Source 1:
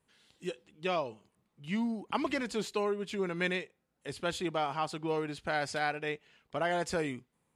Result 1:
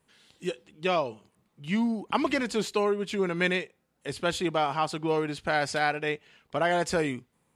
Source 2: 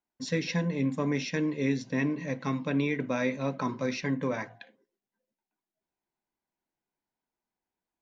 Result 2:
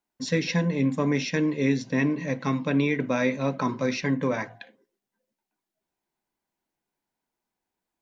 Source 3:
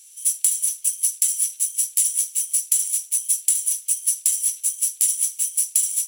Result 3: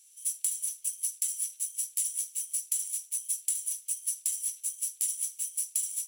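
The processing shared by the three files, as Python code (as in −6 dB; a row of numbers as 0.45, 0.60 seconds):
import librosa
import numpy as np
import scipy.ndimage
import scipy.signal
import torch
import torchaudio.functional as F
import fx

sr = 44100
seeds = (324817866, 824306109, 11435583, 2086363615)

y = fx.hum_notches(x, sr, base_hz=50, count=2)
y = y * 10.0 ** (-12 / 20.0) / np.max(np.abs(y))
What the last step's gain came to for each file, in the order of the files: +6.0, +4.5, −11.0 decibels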